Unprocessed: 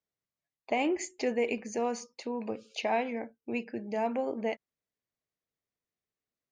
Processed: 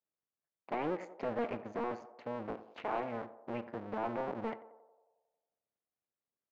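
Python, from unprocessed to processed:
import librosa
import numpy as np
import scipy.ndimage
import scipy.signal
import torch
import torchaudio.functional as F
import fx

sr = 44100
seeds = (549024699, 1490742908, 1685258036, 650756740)

p1 = fx.cycle_switch(x, sr, every=2, mode='muted')
p2 = fx.highpass(p1, sr, hz=150.0, slope=6)
p3 = 10.0 ** (-30.0 / 20.0) * (np.abs((p2 / 10.0 ** (-30.0 / 20.0) + 3.0) % 4.0 - 2.0) - 1.0)
p4 = p2 + (p3 * librosa.db_to_amplitude(-5.0))
p5 = scipy.signal.sosfilt(scipy.signal.butter(2, 1600.0, 'lowpass', fs=sr, output='sos'), p4)
p6 = fx.echo_banded(p5, sr, ms=90, feedback_pct=66, hz=630.0, wet_db=-13)
y = p6 * librosa.db_to_amplitude(-4.0)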